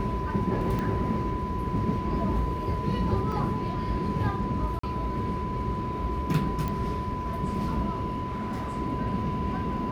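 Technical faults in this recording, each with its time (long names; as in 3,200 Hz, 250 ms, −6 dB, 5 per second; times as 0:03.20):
whistle 1,000 Hz −33 dBFS
0:00.79: click −19 dBFS
0:03.32: drop-out 3.5 ms
0:04.79–0:04.83: drop-out 44 ms
0:06.68: click −18 dBFS
0:08.27–0:08.78: clipping −28 dBFS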